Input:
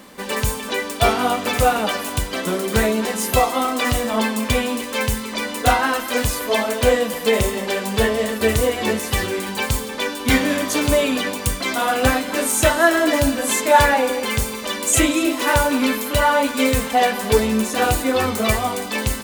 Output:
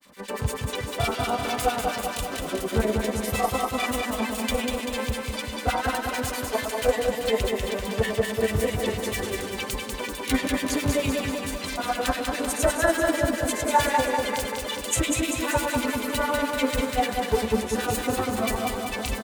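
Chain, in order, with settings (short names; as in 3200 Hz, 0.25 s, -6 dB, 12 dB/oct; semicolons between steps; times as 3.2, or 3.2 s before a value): harmonic tremolo 9 Hz, depth 100%, crossover 1500 Hz; grains, spray 17 ms, pitch spread up and down by 0 st; feedback echo 0.194 s, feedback 60%, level -4 dB; gain -3 dB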